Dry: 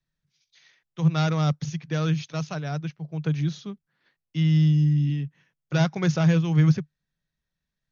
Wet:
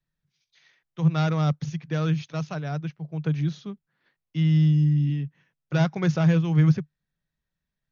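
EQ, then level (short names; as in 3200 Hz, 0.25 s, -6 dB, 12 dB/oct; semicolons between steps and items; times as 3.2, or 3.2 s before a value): high shelf 4600 Hz -9 dB; 0.0 dB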